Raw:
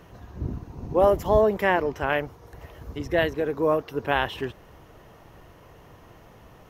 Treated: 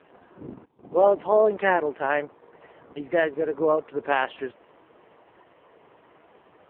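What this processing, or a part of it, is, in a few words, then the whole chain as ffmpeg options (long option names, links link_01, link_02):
telephone: -filter_complex "[0:a]asettb=1/sr,asplit=3[link_01][link_02][link_03];[link_01]atrim=end=0.654[link_04];[link_02]atrim=start=0.65:end=1.67,asetpts=PTS-STARTPTS,afade=type=in:duration=0.004:curve=qsin,afade=type=out:start_time=1.016:duration=0.004:curve=qsin,agate=range=-18dB:threshold=-35dB:ratio=16:detection=peak[link_05];[link_03]atrim=start=1.666[link_06];[link_04][link_05]acrossfade=duration=0.004:curve1=hsin:curve2=qsin[link_07];[link_07][link_06]acrossfade=duration=0.004:curve1=qsin:curve2=hsin,highpass=280,lowpass=3200,volume=1.5dB" -ar 8000 -c:a libopencore_amrnb -b:a 4750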